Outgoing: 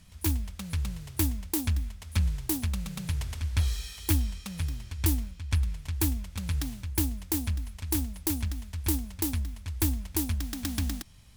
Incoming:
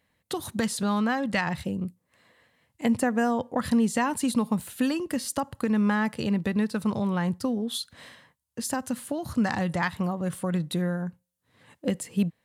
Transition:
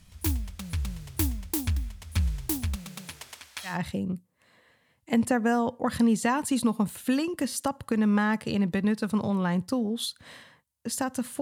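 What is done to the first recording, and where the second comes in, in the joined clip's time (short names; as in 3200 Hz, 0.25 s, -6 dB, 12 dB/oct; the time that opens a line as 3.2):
outgoing
2.75–3.79 HPF 160 Hz -> 1200 Hz
3.71 switch to incoming from 1.43 s, crossfade 0.16 s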